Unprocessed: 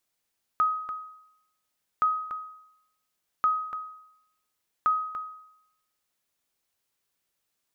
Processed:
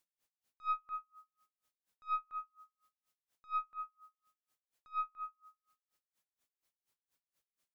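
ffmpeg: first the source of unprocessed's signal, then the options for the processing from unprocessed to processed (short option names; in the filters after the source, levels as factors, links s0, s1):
-f lavfi -i "aevalsrc='0.141*(sin(2*PI*1260*mod(t,1.42))*exp(-6.91*mod(t,1.42)/0.8)+0.335*sin(2*PI*1260*max(mod(t,1.42)-0.29,0))*exp(-6.91*max(mod(t,1.42)-0.29,0)/0.8))':d=5.68:s=44100"
-af "aeval=exprs='(tanh(14.1*val(0)+0.35)-tanh(0.35))/14.1':c=same,aeval=exprs='val(0)*pow(10,-36*(0.5-0.5*cos(2*PI*4.2*n/s))/20)':c=same"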